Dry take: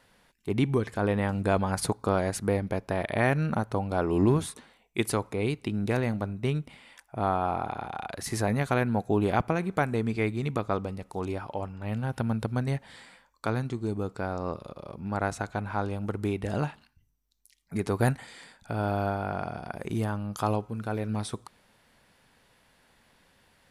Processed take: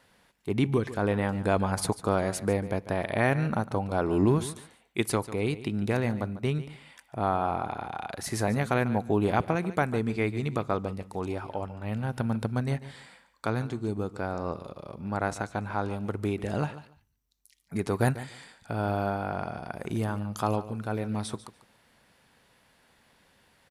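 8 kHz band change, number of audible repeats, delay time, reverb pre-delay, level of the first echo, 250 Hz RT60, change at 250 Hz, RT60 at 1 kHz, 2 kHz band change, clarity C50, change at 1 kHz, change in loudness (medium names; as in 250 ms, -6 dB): 0.0 dB, 2, 145 ms, no reverb, -15.0 dB, no reverb, 0.0 dB, no reverb, 0.0 dB, no reverb, 0.0 dB, 0.0 dB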